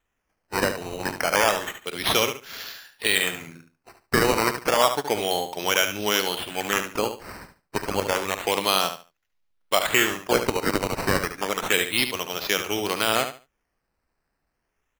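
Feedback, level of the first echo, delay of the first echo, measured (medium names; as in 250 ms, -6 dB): 22%, -9.0 dB, 72 ms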